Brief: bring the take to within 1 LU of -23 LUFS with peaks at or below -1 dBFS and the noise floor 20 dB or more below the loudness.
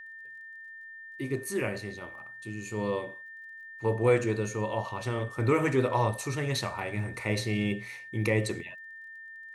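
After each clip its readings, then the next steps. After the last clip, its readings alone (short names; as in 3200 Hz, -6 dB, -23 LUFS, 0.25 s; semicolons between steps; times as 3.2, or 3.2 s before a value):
ticks 25/s; steady tone 1800 Hz; tone level -43 dBFS; loudness -30.5 LUFS; peak -12.5 dBFS; loudness target -23.0 LUFS
-> de-click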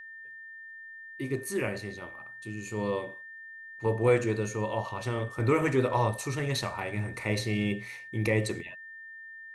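ticks 0/s; steady tone 1800 Hz; tone level -43 dBFS
-> notch 1800 Hz, Q 30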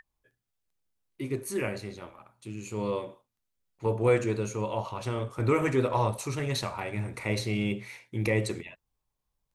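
steady tone none; loudness -30.5 LUFS; peak -12.5 dBFS; loudness target -23.0 LUFS
-> gain +7.5 dB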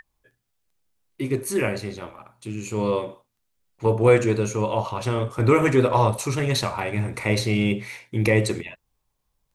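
loudness -23.0 LUFS; peak -5.0 dBFS; noise floor -76 dBFS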